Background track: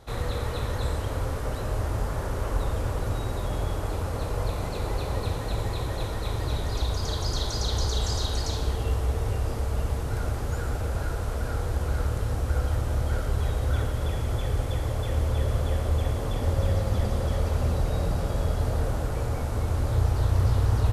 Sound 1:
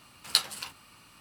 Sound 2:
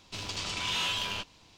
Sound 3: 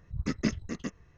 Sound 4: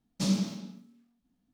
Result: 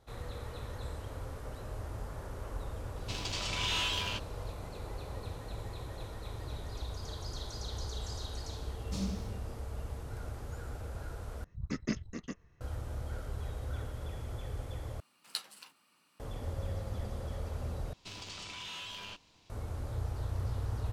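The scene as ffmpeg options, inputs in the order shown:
ffmpeg -i bed.wav -i cue0.wav -i cue1.wav -i cue2.wav -i cue3.wav -filter_complex "[2:a]asplit=2[link_01][link_02];[0:a]volume=-13dB[link_03];[1:a]highpass=frequency=170:width=0.5412,highpass=frequency=170:width=1.3066[link_04];[link_02]acompressor=threshold=-34dB:ratio=6:attack=3.2:release=140:knee=1:detection=peak[link_05];[link_03]asplit=4[link_06][link_07][link_08][link_09];[link_06]atrim=end=11.444[link_10];[3:a]atrim=end=1.17,asetpts=PTS-STARTPTS,volume=-5.5dB[link_11];[link_07]atrim=start=12.606:end=15.004[link_12];[link_04]atrim=end=1.2,asetpts=PTS-STARTPTS,volume=-14dB[link_13];[link_08]atrim=start=16.196:end=17.934[link_14];[link_05]atrim=end=1.57,asetpts=PTS-STARTPTS,volume=-6.5dB[link_15];[link_09]atrim=start=19.496[link_16];[link_01]atrim=end=1.57,asetpts=PTS-STARTPTS,volume=-2dB,afade=type=in:duration=0.004:curve=hsin,afade=type=out:start_time=1.566:duration=0.004:curve=hsin,adelay=2960[link_17];[4:a]atrim=end=1.53,asetpts=PTS-STARTPTS,volume=-10dB,afade=type=in:duration=0.004:curve=hsin,afade=type=out:start_time=1.526:duration=0.004:curve=hsin,adelay=8720[link_18];[link_10][link_11]acrossfade=duration=0.004:curve1=hsin:curve2=hsin[link_19];[link_19][link_12]acrossfade=duration=0.004:curve1=hsin:curve2=hsin[link_20];[link_20][link_13]acrossfade=duration=0.004:curve1=hsin:curve2=hsin[link_21];[link_21][link_14]acrossfade=duration=0.004:curve1=hsin:curve2=hsin[link_22];[link_22][link_15]acrossfade=duration=0.004:curve1=hsin:curve2=hsin[link_23];[link_23][link_16]acrossfade=duration=0.004:curve1=hsin:curve2=hsin[link_24];[link_24][link_17][link_18]amix=inputs=3:normalize=0" out.wav

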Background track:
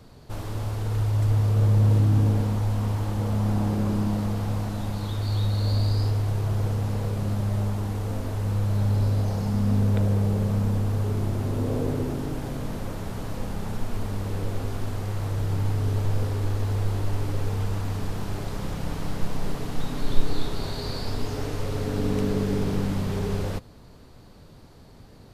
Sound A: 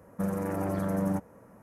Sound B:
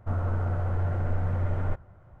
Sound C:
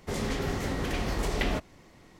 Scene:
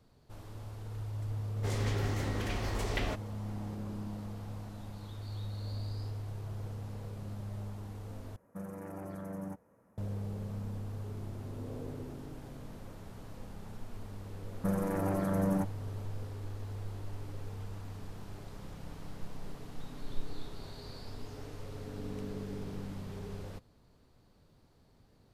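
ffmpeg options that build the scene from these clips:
ffmpeg -i bed.wav -i cue0.wav -i cue1.wav -i cue2.wav -filter_complex "[1:a]asplit=2[link_01][link_02];[0:a]volume=-15.5dB[link_03];[3:a]equalizer=frequency=190:width_type=o:width=0.77:gain=-6[link_04];[link_03]asplit=2[link_05][link_06];[link_05]atrim=end=8.364[link_07];[link_01]atrim=end=1.62,asetpts=PTS-STARTPTS,volume=-12.5dB[link_08];[link_06]atrim=start=9.976[link_09];[link_04]atrim=end=2.19,asetpts=PTS-STARTPTS,volume=-5dB,afade=type=in:duration=0.004:curve=hsin,afade=type=out:start_time=2.186:duration=0.004:curve=hsin,adelay=1560[link_10];[link_02]atrim=end=1.62,asetpts=PTS-STARTPTS,volume=-1.5dB,afade=type=in:duration=0.004:curve=hsin,afade=type=out:start_time=1.616:duration=0.004:curve=hsin,adelay=14450[link_11];[link_07][link_08]acrossfade=duration=0.004:curve1=hsin:curve2=hsin[link_12];[link_12][link_09]acrossfade=duration=0.004:curve1=hsin:curve2=hsin[link_13];[link_13][link_10][link_11]amix=inputs=3:normalize=0" out.wav

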